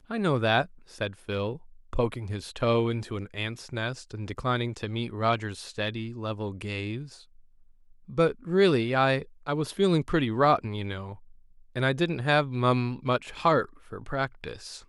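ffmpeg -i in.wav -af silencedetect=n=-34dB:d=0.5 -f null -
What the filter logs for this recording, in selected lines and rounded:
silence_start: 7.03
silence_end: 8.10 | silence_duration: 1.07
silence_start: 11.12
silence_end: 11.76 | silence_duration: 0.64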